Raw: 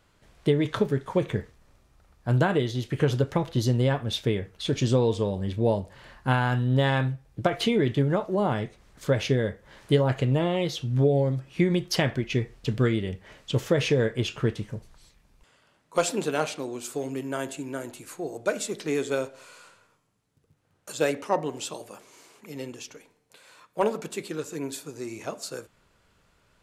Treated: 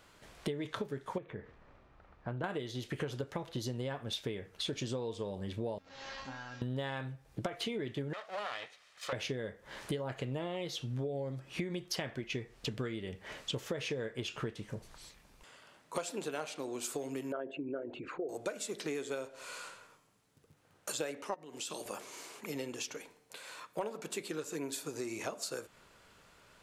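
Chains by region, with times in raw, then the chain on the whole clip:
1.18–2.44 LPF 2200 Hz + compressor 1.5:1, threshold -44 dBFS
5.78–6.62 delta modulation 32 kbps, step -29 dBFS + compressor 2.5:1, threshold -33 dBFS + resonator 270 Hz, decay 0.44 s, mix 90%
8.13–9.13 minimum comb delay 1.6 ms + band-pass 3100 Hz, Q 0.75
17.32–18.29 formant sharpening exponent 2 + LPF 3200 Hz 24 dB/oct
21.34–21.86 HPF 150 Hz + bell 680 Hz -7.5 dB 1.9 oct + compressor 10:1, threshold -36 dBFS
whole clip: low shelf 190 Hz -9.5 dB; compressor 6:1, threshold -41 dBFS; gain +5 dB

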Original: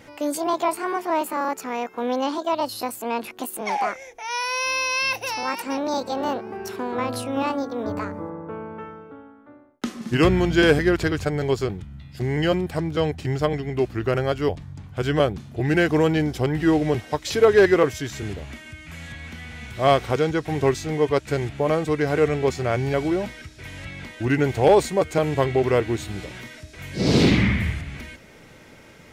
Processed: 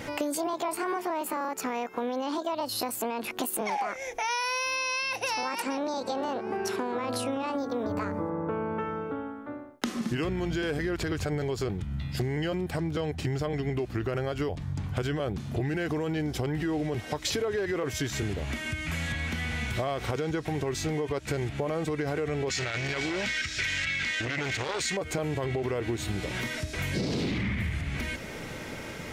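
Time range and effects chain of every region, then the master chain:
4.75–7.55 LPF 12000 Hz 24 dB/oct + low shelf 97 Hz -11 dB
22.49–24.97 band shelf 3300 Hz +15 dB 2.8 oct + core saturation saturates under 2600 Hz
whole clip: limiter -19 dBFS; compressor 6:1, threshold -37 dBFS; gain +9 dB

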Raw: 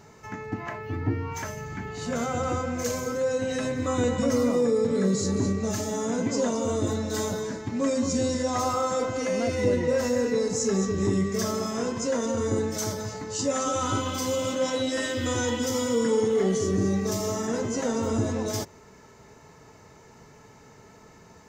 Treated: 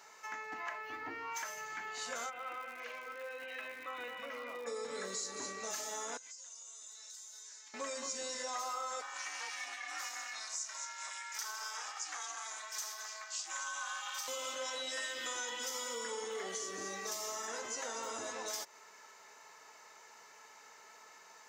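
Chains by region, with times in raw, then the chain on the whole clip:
2.29–4.66 ladder low-pass 3000 Hz, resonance 50% + crackle 240/s -45 dBFS
6.17–7.74 band-pass 7000 Hz, Q 1.5 + compressor 10:1, threshold -47 dBFS
9.01–14.28 steep high-pass 730 Hz + ring modulator 220 Hz
whole clip: HPF 970 Hz 12 dB/oct; compressor 4:1, threshold -38 dBFS

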